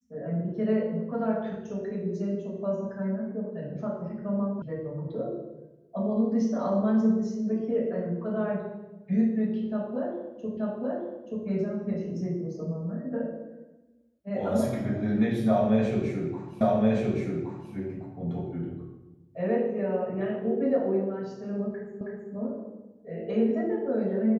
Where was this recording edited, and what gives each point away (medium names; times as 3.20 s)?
4.62 s: sound stops dead
10.57 s: repeat of the last 0.88 s
16.61 s: repeat of the last 1.12 s
22.01 s: repeat of the last 0.32 s